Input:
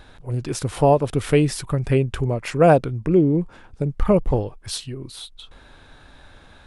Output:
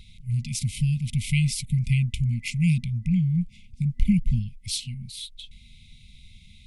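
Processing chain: FFT band-reject 240–2000 Hz

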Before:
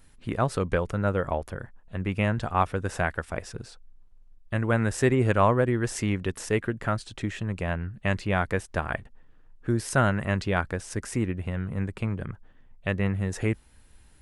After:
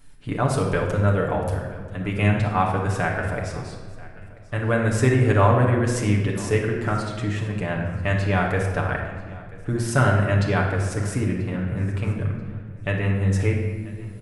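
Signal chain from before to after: 0.45–2.28 s: treble shelf 5.2 kHz +6.5 dB; feedback delay 986 ms, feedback 30%, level -21 dB; reverberation RT60 1.5 s, pre-delay 7 ms, DRR -1 dB

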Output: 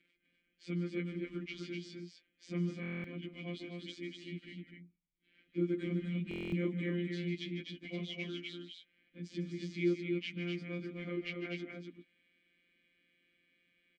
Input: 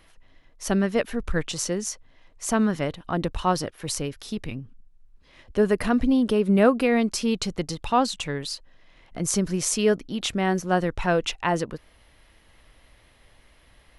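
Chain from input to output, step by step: frequency-domain pitch shifter -4 st; Bessel low-pass 7.7 kHz; de-esser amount 75%; robot voice 174 Hz; vowel filter i; on a send: loudspeakers at several distances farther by 52 m -12 dB, 86 m -4 dB; on the sum: buffer glitch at 2.81/6.29 s, samples 1024, times 9; trim +4 dB

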